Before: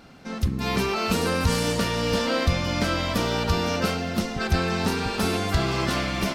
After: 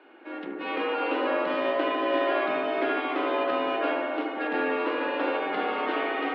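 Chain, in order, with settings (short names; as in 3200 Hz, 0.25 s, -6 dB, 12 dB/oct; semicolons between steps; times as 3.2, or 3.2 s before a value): mistuned SSB +89 Hz 200–3000 Hz; analogue delay 75 ms, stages 1024, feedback 79%, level -4 dB; gain -3.5 dB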